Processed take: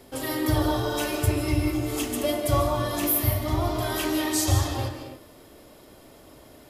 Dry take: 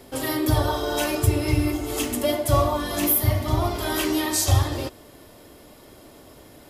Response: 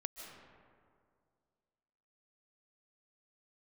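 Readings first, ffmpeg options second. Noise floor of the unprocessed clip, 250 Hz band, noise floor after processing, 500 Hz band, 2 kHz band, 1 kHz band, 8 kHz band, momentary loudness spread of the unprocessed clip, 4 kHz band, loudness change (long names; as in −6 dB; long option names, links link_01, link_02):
−49 dBFS, −1.0 dB, −51 dBFS, −2.5 dB, −2.5 dB, −2.5 dB, −3.0 dB, 6 LU, −2.5 dB, −2.5 dB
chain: -filter_complex "[1:a]atrim=start_sample=2205,afade=type=out:start_time=0.36:duration=0.01,atrim=end_sample=16317[link_01];[0:a][link_01]afir=irnorm=-1:irlink=0"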